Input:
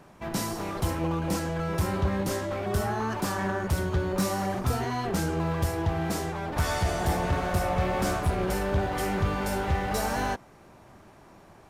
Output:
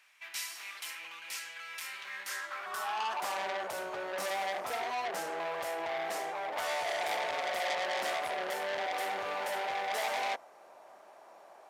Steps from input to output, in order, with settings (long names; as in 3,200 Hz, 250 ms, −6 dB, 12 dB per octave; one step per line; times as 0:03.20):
high-pass filter sweep 2,300 Hz → 630 Hz, 0:02.01–0:03.40
saturating transformer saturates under 3,500 Hz
level −4.5 dB